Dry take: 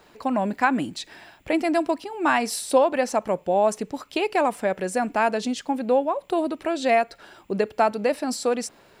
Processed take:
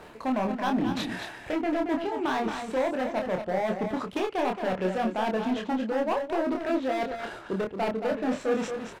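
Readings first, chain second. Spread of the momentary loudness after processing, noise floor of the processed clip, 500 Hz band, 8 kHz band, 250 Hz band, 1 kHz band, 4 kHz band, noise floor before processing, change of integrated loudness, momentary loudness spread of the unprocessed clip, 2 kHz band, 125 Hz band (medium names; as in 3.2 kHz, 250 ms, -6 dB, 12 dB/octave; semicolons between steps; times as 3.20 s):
5 LU, -45 dBFS, -5.5 dB, -14.0 dB, -2.0 dB, -6.0 dB, -4.5 dB, -55 dBFS, -5.0 dB, 7 LU, -6.5 dB, +0.5 dB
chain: median filter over 9 samples; low-pass that closes with the level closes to 1.6 kHz, closed at -18.5 dBFS; reverse; compression 5:1, threshold -32 dBFS, peak gain reduction 17 dB; reverse; overload inside the chain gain 32.5 dB; doubling 27 ms -4 dB; delay 225 ms -7.5 dB; trim +7.5 dB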